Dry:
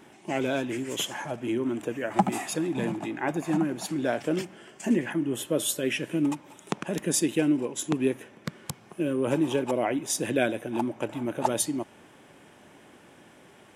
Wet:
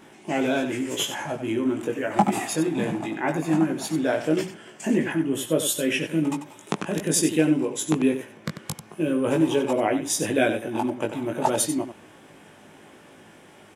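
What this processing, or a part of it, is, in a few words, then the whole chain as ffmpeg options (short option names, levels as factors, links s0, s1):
slapback doubling: -filter_complex "[0:a]asplit=3[s0][s1][s2];[s1]adelay=19,volume=0.631[s3];[s2]adelay=93,volume=0.335[s4];[s0][s3][s4]amix=inputs=3:normalize=0,volume=1.26"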